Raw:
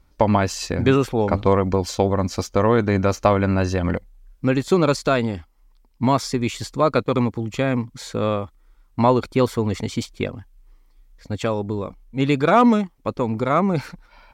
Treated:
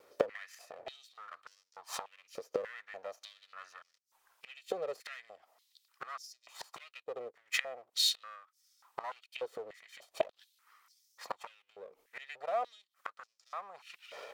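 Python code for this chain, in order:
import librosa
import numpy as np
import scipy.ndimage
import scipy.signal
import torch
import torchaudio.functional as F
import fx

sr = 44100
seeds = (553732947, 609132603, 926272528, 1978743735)

y = fx.lower_of_two(x, sr, delay_ms=1.6)
y = fx.gate_flip(y, sr, shuts_db=-19.0, range_db=-29)
y = fx.filter_held_highpass(y, sr, hz=3.4, low_hz=460.0, high_hz=5400.0)
y = F.gain(torch.from_numpy(y), 2.5).numpy()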